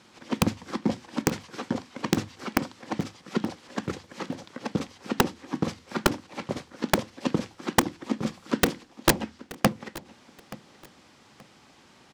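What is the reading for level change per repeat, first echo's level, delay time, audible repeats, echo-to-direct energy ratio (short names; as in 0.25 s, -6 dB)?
-11.5 dB, -19.5 dB, 0.877 s, 2, -19.0 dB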